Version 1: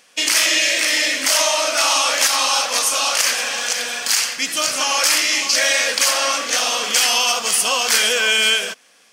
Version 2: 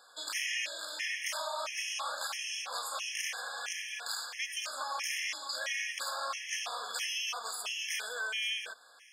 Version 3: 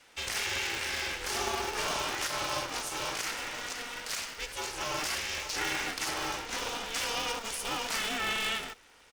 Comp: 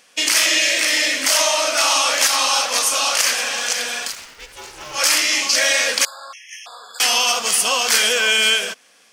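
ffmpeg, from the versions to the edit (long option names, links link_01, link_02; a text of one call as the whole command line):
ffmpeg -i take0.wav -i take1.wav -i take2.wav -filter_complex "[0:a]asplit=3[link_01][link_02][link_03];[link_01]atrim=end=4.14[link_04];[2:a]atrim=start=4.04:end=5.02[link_05];[link_02]atrim=start=4.92:end=6.052[link_06];[1:a]atrim=start=6.048:end=7.002[link_07];[link_03]atrim=start=6.998[link_08];[link_04][link_05]acrossfade=duration=0.1:curve1=tri:curve2=tri[link_09];[link_09][link_06]acrossfade=duration=0.1:curve1=tri:curve2=tri[link_10];[link_10][link_07]acrossfade=duration=0.004:curve1=hsin:curve2=hsin[link_11];[link_11][link_08]acrossfade=duration=0.004:curve1=hsin:curve2=hsin" out.wav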